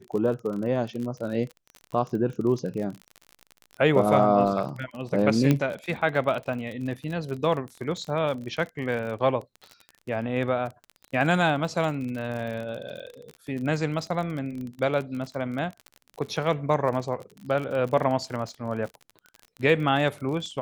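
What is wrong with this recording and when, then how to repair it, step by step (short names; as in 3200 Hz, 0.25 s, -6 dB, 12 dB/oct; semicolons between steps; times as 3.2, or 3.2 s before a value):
crackle 37/s -32 dBFS
5.51 pop -9 dBFS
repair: de-click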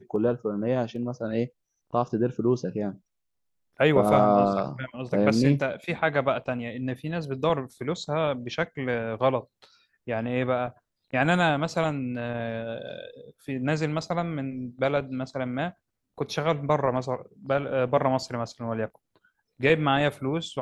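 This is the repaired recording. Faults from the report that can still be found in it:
none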